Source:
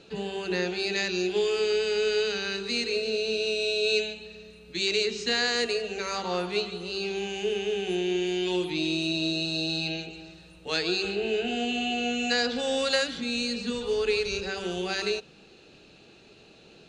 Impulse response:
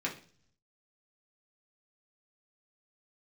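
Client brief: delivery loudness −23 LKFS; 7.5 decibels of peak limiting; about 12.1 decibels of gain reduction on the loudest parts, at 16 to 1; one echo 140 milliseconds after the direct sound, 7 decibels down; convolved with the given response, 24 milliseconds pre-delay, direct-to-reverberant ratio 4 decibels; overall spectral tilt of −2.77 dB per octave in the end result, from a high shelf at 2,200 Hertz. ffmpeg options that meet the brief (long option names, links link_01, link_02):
-filter_complex "[0:a]highshelf=frequency=2200:gain=5.5,acompressor=threshold=-30dB:ratio=16,alimiter=level_in=2.5dB:limit=-24dB:level=0:latency=1,volume=-2.5dB,aecho=1:1:140:0.447,asplit=2[link_01][link_02];[1:a]atrim=start_sample=2205,adelay=24[link_03];[link_02][link_03]afir=irnorm=-1:irlink=0,volume=-9dB[link_04];[link_01][link_04]amix=inputs=2:normalize=0,volume=10.5dB"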